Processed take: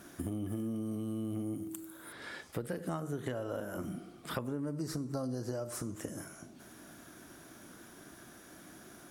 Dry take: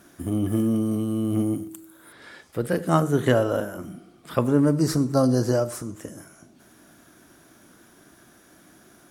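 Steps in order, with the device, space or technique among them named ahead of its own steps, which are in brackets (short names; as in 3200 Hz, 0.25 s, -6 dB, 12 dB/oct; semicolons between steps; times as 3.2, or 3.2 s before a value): serial compression, leveller first (compressor 2:1, threshold -25 dBFS, peak gain reduction 6.5 dB; compressor 5:1, threshold -35 dBFS, peak gain reduction 14 dB)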